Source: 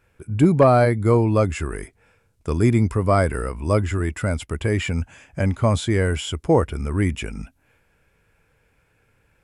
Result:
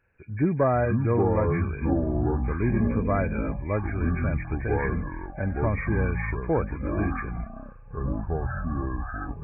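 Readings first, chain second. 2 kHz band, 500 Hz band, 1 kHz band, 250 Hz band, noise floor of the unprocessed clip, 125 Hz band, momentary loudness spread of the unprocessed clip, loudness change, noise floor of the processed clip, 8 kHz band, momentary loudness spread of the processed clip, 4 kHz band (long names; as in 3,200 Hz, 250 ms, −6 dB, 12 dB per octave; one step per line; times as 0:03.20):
−3.5 dB, −6.0 dB, −5.5 dB, −4.0 dB, −64 dBFS, −5.0 dB, 15 LU, −6.0 dB, −43 dBFS, below −40 dB, 10 LU, below −40 dB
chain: hearing-aid frequency compression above 1,500 Hz 4 to 1
delay with pitch and tempo change per echo 330 ms, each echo −6 semitones, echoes 3
level −8 dB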